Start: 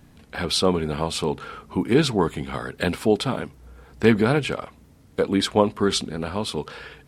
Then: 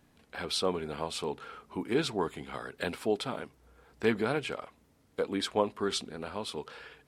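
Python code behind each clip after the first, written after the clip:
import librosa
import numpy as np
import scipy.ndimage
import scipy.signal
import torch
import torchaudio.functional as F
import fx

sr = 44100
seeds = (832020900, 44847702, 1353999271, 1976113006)

y = fx.bass_treble(x, sr, bass_db=-8, treble_db=-1)
y = y * 10.0 ** (-8.5 / 20.0)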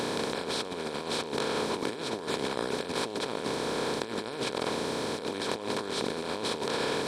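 y = fx.bin_compress(x, sr, power=0.2)
y = fx.over_compress(y, sr, threshold_db=-25.0, ratio=-0.5)
y = y * 10.0 ** (-6.5 / 20.0)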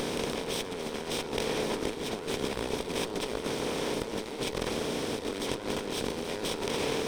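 y = fx.lower_of_two(x, sr, delay_ms=0.33)
y = fx.echo_alternate(y, sr, ms=145, hz=1400.0, feedback_pct=56, wet_db=-9)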